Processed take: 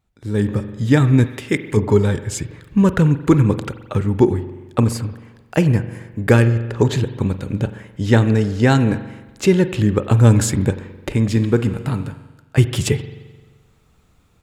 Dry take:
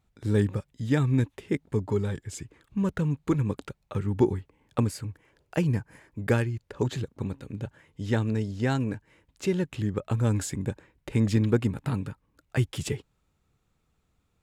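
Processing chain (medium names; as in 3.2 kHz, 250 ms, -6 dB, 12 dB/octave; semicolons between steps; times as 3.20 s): 11.12–12.58 s: feedback comb 52 Hz, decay 1.3 s, harmonics odd, mix 60%; spring tank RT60 1.2 s, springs 43 ms, chirp 45 ms, DRR 11.5 dB; level rider gain up to 15 dB; 1.26–1.77 s: tilt shelf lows -5.5 dB, about 1.1 kHz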